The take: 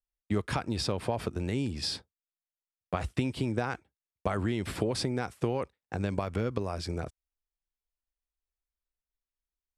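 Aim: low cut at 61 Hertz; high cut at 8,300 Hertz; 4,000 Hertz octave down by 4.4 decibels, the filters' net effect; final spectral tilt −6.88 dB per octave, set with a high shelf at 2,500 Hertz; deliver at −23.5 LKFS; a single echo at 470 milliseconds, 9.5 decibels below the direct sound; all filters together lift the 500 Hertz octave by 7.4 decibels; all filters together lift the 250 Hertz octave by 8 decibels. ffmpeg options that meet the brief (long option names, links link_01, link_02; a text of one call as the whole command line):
ffmpeg -i in.wav -af "highpass=61,lowpass=8300,equalizer=frequency=250:width_type=o:gain=8,equalizer=frequency=500:width_type=o:gain=6.5,highshelf=frequency=2500:gain=3.5,equalizer=frequency=4000:width_type=o:gain=-9,aecho=1:1:470:0.335,volume=3.5dB" out.wav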